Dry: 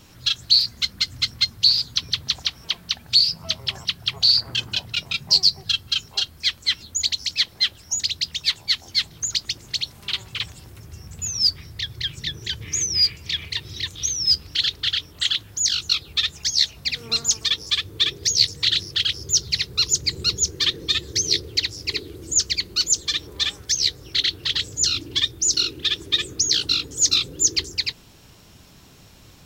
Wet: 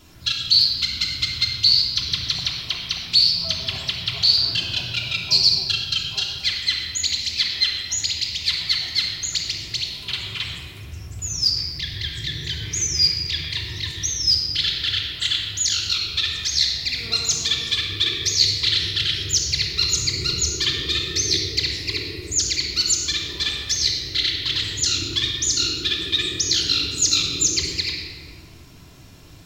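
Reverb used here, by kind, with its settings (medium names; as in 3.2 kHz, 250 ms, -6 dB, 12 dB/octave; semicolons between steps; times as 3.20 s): simulated room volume 3000 m³, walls mixed, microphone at 3.1 m; trim -3 dB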